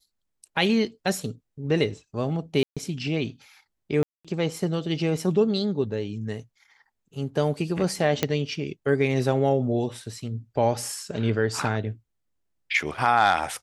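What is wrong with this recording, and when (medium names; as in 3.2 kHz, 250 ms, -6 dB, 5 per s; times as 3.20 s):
2.63–2.77 s: dropout 136 ms
4.03–4.25 s: dropout 216 ms
8.23 s: pop -7 dBFS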